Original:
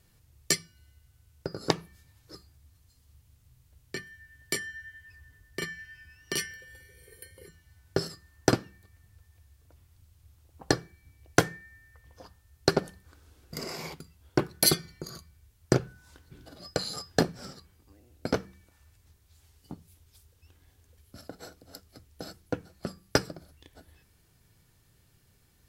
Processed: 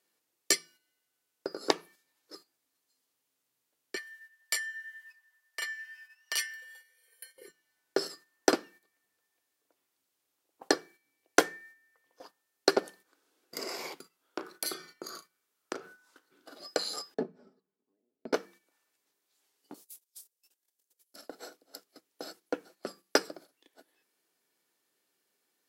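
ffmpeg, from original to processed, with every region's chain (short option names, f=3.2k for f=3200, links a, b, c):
-filter_complex "[0:a]asettb=1/sr,asplit=3[a][b][c];[a]atrim=end=3.964[d];[b]atrim=start=3.96:end=7.36,asetpts=PTS-STARTPTS,afade=t=in:d=0.004:c=qsin,afade=t=out:st=3.396:d=0.004:c=qsin,highpass=f=690:w=0.5412,highpass=f=690:w=1.3066,aecho=1:1:6.3:0.39,atrim=end_sample=149940[e];[c]atrim=start=7.356[f];[d][e]acrossfade=d=0.004:c1=hsin:c2=qsin[g];[g][f]acrossfade=d=0.004:c1=qsin:c2=hsin,asettb=1/sr,asplit=3[h][i][j];[h]atrim=end=14.014[k];[i]atrim=start=14.01:end=16.55,asetpts=PTS-STARTPTS,afade=t=in:d=0.004:c=qsin,afade=t=out:st=2.536:d=0.004:c=qsin,equalizer=f=1.3k:w=3.7:g=8.5,acompressor=threshold=-31dB:ratio=6:attack=3.2:release=140:knee=1:detection=peak,asplit=2[l][m];[m]adelay=35,volume=-12dB[n];[l][n]amix=inputs=2:normalize=0,atrim=end_sample=112014[o];[j]atrim=start=16.546[p];[k][o]acrossfade=d=0.004:c1=hsin:c2=qsin[q];[q][p]acrossfade=d=0.004:c1=qsin:c2=hsin,asettb=1/sr,asplit=3[r][s][t];[r]atrim=end=17.144[u];[s]atrim=start=17.14:end=18.33,asetpts=PTS-STARTPTS,afade=t=in:d=0.004:c=qsin,afade=t=out:st=1.186:d=0.004:c=qsin,bandpass=f=110:t=q:w=0.69,aecho=1:1:4.7:0.68,atrim=end_sample=52479[v];[t]atrim=start=18.326[w];[u][v]acrossfade=d=0.004:c1=hsin:c2=qsin[x];[x][w]acrossfade=d=0.004:c1=qsin:c2=hsin,asettb=1/sr,asplit=3[y][z][aa];[y]atrim=end=19.744[ab];[z]atrim=start=19.74:end=21.16,asetpts=PTS-STARTPTS,afade=t=in:d=0.004:c=qsin,afade=t=out:st=1.416:d=0.004:c=qsin,asplit=2[ac][ad];[ad]adelay=32,volume=-6.5dB[ae];[ac][ae]amix=inputs=2:normalize=0,atrim=end_sample=62622,agate=range=-20dB:threshold=-58dB:ratio=16:release=100:detection=peak,bass=f=250:g=-9,treble=f=4k:g=15[af];[aa]atrim=start=21.156[ag];[ab][af]acrossfade=d=0.004:c1=hsin:c2=qsin[ah];[ah][ag]acrossfade=d=0.004:c1=qsin:c2=hsin,highpass=f=290:w=0.5412,highpass=f=290:w=1.3066,agate=range=-9dB:threshold=-53dB:ratio=16:detection=peak"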